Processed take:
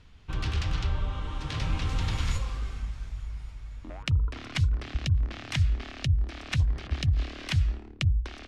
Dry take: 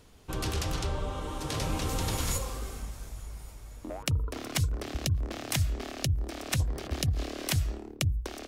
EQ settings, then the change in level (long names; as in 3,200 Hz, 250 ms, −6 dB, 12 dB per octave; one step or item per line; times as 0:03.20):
low-pass filter 2,900 Hz 12 dB per octave
parametric band 480 Hz −15 dB 2.6 octaves
+6.5 dB